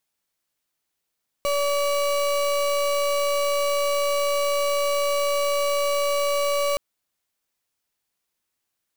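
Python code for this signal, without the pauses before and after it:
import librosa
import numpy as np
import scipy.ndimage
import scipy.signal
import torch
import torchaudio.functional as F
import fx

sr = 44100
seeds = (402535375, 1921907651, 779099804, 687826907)

y = fx.pulse(sr, length_s=5.32, hz=572.0, level_db=-22.5, duty_pct=34)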